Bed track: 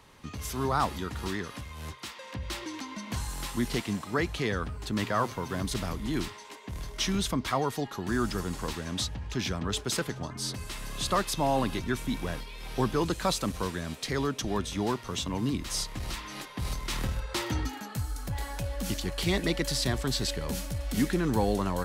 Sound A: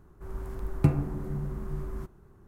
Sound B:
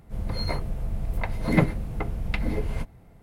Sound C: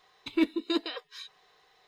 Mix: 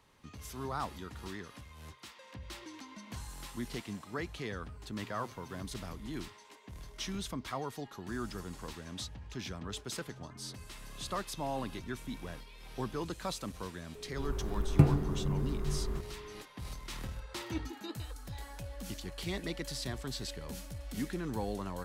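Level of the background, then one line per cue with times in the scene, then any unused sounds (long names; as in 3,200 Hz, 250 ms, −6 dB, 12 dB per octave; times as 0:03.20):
bed track −10 dB
0:13.95: mix in A + steady tone 420 Hz −47 dBFS
0:17.14: mix in C −15 dB
not used: B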